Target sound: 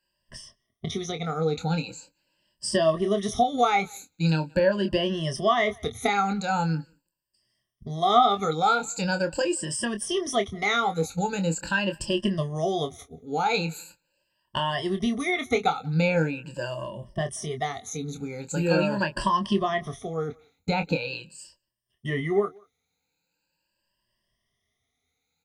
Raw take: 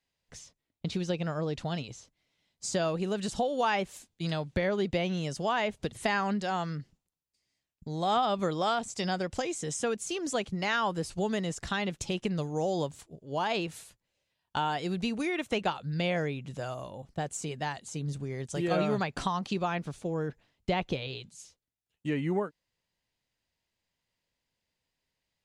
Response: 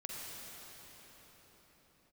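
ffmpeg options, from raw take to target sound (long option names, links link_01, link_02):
-filter_complex "[0:a]afftfilt=real='re*pow(10,22/40*sin(2*PI*(1.3*log(max(b,1)*sr/1024/100)/log(2)-(0.42)*(pts-256)/sr)))':imag='im*pow(10,22/40*sin(2*PI*(1.3*log(max(b,1)*sr/1024/100)/log(2)-(0.42)*(pts-256)/sr)))':win_size=1024:overlap=0.75,asplit=2[link_01][link_02];[link_02]adelay=25,volume=-8dB[link_03];[link_01][link_03]amix=inputs=2:normalize=0,asplit=2[link_04][link_05];[link_05]adelay=180,highpass=300,lowpass=3400,asoftclip=type=hard:threshold=-16dB,volume=-27dB[link_06];[link_04][link_06]amix=inputs=2:normalize=0"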